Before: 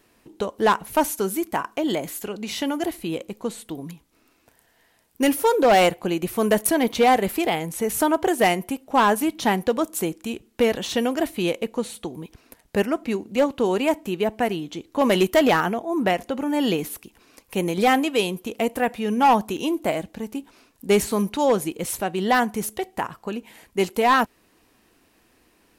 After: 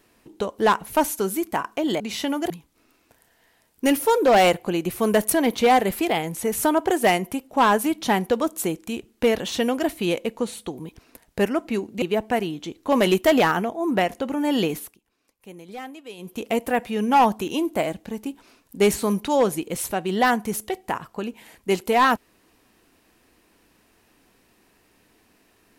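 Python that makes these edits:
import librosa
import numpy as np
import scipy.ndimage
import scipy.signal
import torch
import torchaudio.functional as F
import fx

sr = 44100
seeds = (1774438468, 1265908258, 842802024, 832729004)

y = fx.edit(x, sr, fx.cut(start_s=2.0, length_s=0.38),
    fx.cut(start_s=2.88, length_s=0.99),
    fx.cut(start_s=13.39, length_s=0.72),
    fx.fade_down_up(start_s=16.85, length_s=1.63, db=-18.0, fade_s=0.22), tone=tone)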